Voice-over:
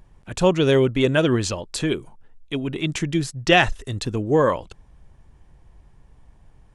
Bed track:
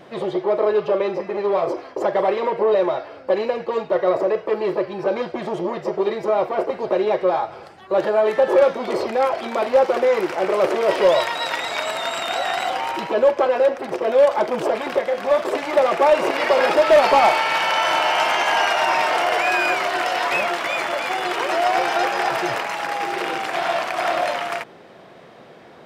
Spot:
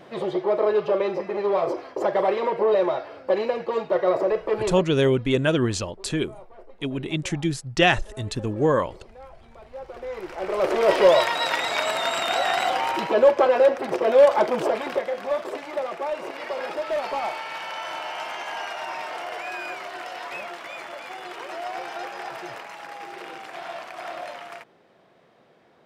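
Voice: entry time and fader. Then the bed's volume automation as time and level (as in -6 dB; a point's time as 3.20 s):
4.30 s, -2.5 dB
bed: 4.63 s -2.5 dB
5.11 s -26 dB
9.64 s -26 dB
10.83 s 0 dB
14.41 s 0 dB
16.03 s -13.5 dB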